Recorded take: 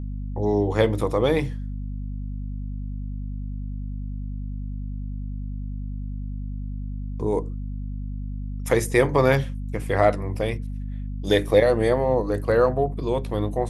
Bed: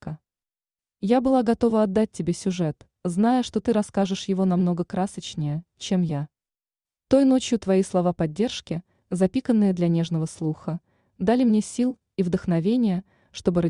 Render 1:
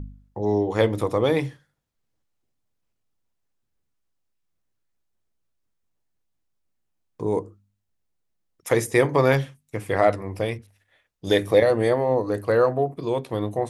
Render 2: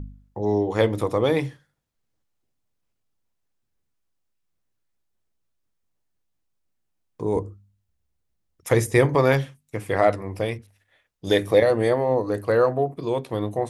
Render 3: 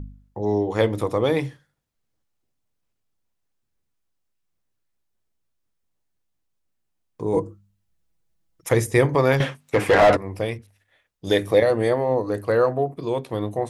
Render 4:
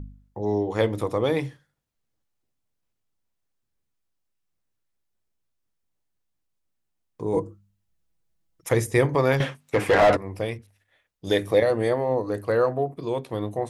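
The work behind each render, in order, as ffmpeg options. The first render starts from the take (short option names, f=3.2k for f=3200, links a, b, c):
-af "bandreject=f=50:t=h:w=4,bandreject=f=100:t=h:w=4,bandreject=f=150:t=h:w=4,bandreject=f=200:t=h:w=4,bandreject=f=250:t=h:w=4"
-filter_complex "[0:a]asettb=1/sr,asplit=3[a][b][c];[a]atrim=end=7.354[d];[b]atrim=start=7.35:end=9.15,asetpts=PTS-STARTPTS,afade=t=in:d=0.004:c=qsin,afade=t=out:st=1.796:d=0.004:c=qsin,equalizer=f=66:t=o:w=1.6:g=14[e];[c]atrim=start=9.146[f];[d][e]acrossfade=d=0.004:c1=hsin:c2=qsin[g];[g][f]acrossfade=d=0.004:c1=qsin:c2=hsin"
-filter_complex "[0:a]asettb=1/sr,asplit=3[a][b][c];[a]atrim=end=7.334[d];[b]atrim=start=7.33:end=8.69,asetpts=PTS-STARTPTS,afade=t=in:d=0.004:c=qsin,afade=t=out:st=1.356:d=0.004:c=qsin,aecho=1:1:6.1:0.98,atrim=end_sample=59976[e];[c]atrim=start=8.686[f];[d][e]acrossfade=d=0.004:c1=hsin:c2=qsin[g];[g][f]acrossfade=d=0.004:c1=qsin:c2=hsin,asettb=1/sr,asplit=3[h][i][j];[h]atrim=end=9.404[k];[i]atrim=start=9.4:end=10.17,asetpts=PTS-STARTPTS,afade=t=in:d=0.004:c=qsin,afade=t=out:st=0.766:d=0.004:c=qsin,asplit=2[l][m];[m]highpass=f=720:p=1,volume=29dB,asoftclip=type=tanh:threshold=-6dB[n];[l][n]amix=inputs=2:normalize=0,lowpass=f=1.5k:p=1,volume=-6dB[o];[j]atrim=start=10.166[p];[k][o]acrossfade=d=0.004:c1=hsin:c2=qsin[q];[q][p]acrossfade=d=0.004:c1=qsin:c2=hsin"
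-af "volume=-2.5dB"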